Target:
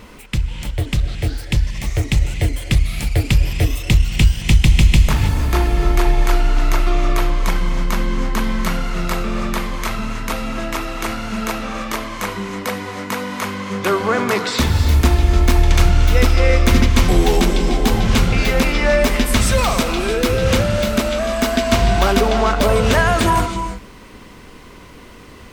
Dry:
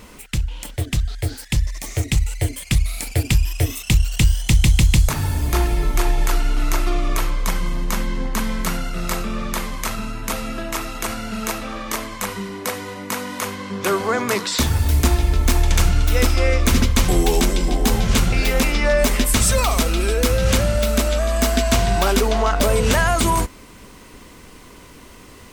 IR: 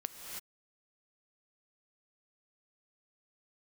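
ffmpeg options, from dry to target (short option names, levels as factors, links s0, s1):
-filter_complex "[0:a]asplit=2[s0][s1];[1:a]atrim=start_sample=2205,lowpass=5400[s2];[s1][s2]afir=irnorm=-1:irlink=0,volume=1.33[s3];[s0][s3]amix=inputs=2:normalize=0,volume=0.668"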